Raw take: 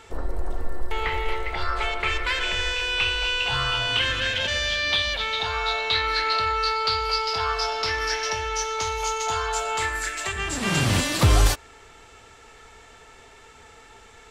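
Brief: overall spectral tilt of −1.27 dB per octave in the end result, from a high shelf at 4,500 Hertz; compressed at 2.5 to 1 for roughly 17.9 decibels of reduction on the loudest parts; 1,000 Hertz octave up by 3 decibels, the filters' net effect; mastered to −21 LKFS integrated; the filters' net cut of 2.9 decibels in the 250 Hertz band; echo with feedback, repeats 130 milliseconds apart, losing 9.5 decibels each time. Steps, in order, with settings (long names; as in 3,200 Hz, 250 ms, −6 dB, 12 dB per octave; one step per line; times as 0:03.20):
parametric band 250 Hz −4.5 dB
parametric band 1,000 Hz +3.5 dB
high-shelf EQ 4,500 Hz +9 dB
downward compressor 2.5 to 1, threshold −41 dBFS
repeating echo 130 ms, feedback 33%, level −9.5 dB
level +14.5 dB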